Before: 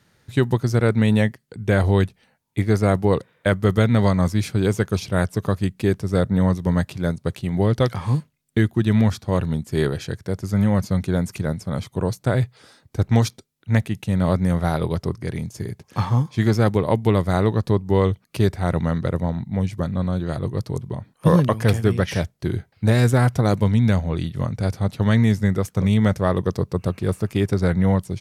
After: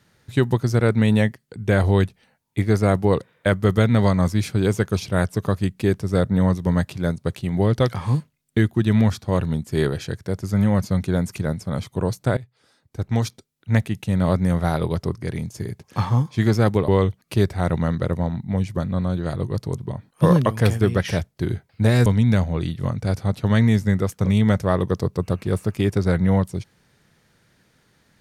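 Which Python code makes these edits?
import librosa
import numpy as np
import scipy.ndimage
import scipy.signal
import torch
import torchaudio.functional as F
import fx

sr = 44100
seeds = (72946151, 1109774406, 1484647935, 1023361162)

y = fx.edit(x, sr, fx.fade_in_from(start_s=12.37, length_s=1.4, floor_db=-21.0),
    fx.cut(start_s=16.88, length_s=1.03),
    fx.cut(start_s=23.09, length_s=0.53), tone=tone)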